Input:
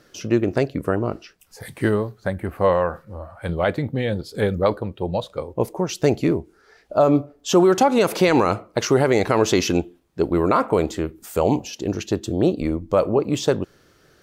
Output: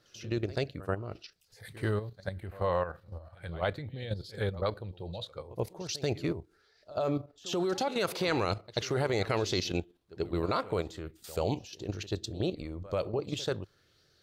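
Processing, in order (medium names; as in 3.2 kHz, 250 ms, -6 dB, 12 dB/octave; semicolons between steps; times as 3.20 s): fifteen-band graphic EQ 100 Hz +7 dB, 250 Hz -5 dB, 1 kHz -4 dB, 4 kHz +8 dB; level held to a coarse grid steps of 10 dB; pre-echo 86 ms -18 dB; sweeping bell 1.1 Hz 990–5200 Hz +6 dB; trim -9 dB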